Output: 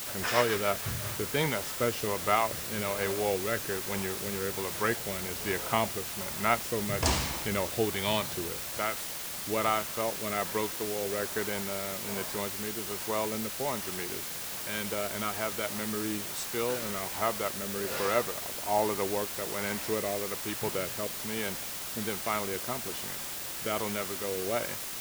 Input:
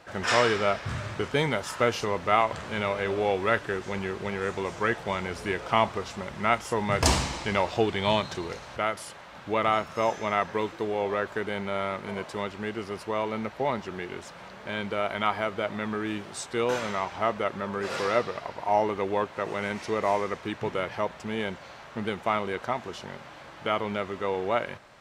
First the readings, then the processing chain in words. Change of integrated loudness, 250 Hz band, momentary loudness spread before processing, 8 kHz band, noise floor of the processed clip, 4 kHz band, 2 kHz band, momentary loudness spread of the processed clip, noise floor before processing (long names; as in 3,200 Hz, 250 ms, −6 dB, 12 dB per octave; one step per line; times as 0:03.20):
−2.5 dB, −3.5 dB, 10 LU, +6.5 dB, −38 dBFS, 0.0 dB, −3.5 dB, 6 LU, −46 dBFS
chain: rotating-speaker cabinet horn 7 Hz, later 1.2 Hz, at 0:00.54
bit-depth reduction 6 bits, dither triangular
level −2 dB